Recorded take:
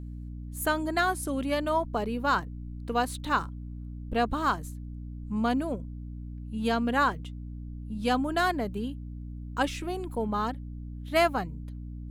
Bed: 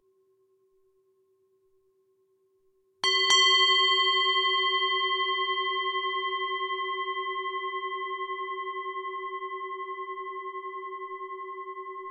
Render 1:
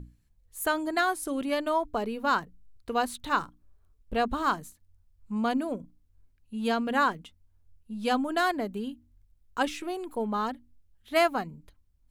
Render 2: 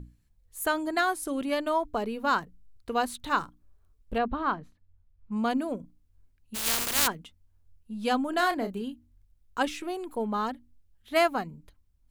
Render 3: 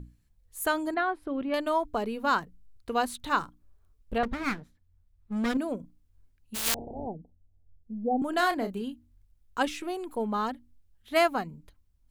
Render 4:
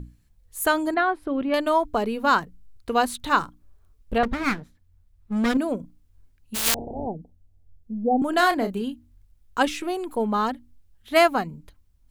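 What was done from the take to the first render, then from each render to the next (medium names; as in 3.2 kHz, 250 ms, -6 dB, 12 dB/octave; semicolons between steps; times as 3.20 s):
hum notches 60/120/180/240/300 Hz
4.18–5.32 s: distance through air 320 m; 6.54–7.06 s: spectral contrast reduction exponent 0.13; 8.30–8.82 s: doubling 31 ms -8.5 dB
0.94–1.54 s: distance through air 430 m; 4.23–5.57 s: comb filter that takes the minimum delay 0.54 ms; 6.74–8.22 s: steep low-pass 830 Hz 96 dB/octave
trim +6 dB; peak limiter -3 dBFS, peak gain reduction 1 dB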